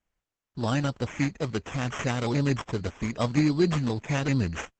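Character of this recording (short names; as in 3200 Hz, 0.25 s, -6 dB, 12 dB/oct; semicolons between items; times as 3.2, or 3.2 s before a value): aliases and images of a low sample rate 4400 Hz, jitter 0%; Opus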